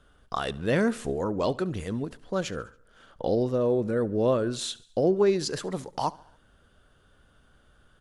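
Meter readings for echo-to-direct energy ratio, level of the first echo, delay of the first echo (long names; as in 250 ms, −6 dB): −20.5 dB, −22.0 dB, 70 ms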